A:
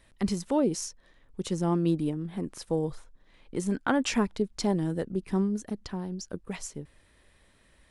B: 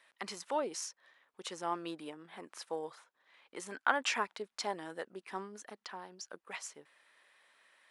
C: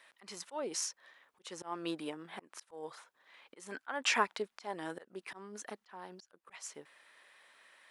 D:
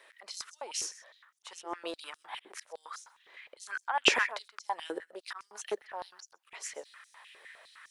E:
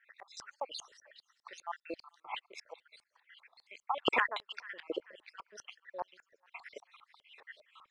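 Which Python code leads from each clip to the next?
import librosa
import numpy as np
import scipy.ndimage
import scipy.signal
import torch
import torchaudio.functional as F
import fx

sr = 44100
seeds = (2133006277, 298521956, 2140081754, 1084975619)

y1 = scipy.signal.sosfilt(scipy.signal.butter(2, 1000.0, 'highpass', fs=sr, output='sos'), x)
y1 = fx.high_shelf(y1, sr, hz=3700.0, db=-11.5)
y1 = y1 * librosa.db_to_amplitude(3.5)
y2 = fx.auto_swell(y1, sr, attack_ms=272.0)
y2 = y2 * librosa.db_to_amplitude(4.5)
y3 = fx.rider(y2, sr, range_db=4, speed_s=2.0)
y3 = y3 + 10.0 ** (-18.0 / 20.0) * np.pad(y3, (int(128 * sr / 1000.0), 0))[:len(y3)]
y3 = fx.filter_held_highpass(y3, sr, hz=9.8, low_hz=400.0, high_hz=6100.0)
y4 = fx.spec_dropout(y3, sr, seeds[0], share_pct=63)
y4 = fx.echo_wet_highpass(y4, sr, ms=440, feedback_pct=31, hz=2100.0, wet_db=-17.0)
y4 = fx.filter_lfo_lowpass(y4, sr, shape='saw_up', hz=5.0, low_hz=850.0, high_hz=5100.0, q=1.4)
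y4 = y4 * librosa.db_to_amplitude(1.5)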